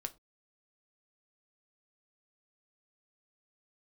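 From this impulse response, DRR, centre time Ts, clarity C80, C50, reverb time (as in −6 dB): 7.5 dB, 4 ms, 27.5 dB, 20.0 dB, non-exponential decay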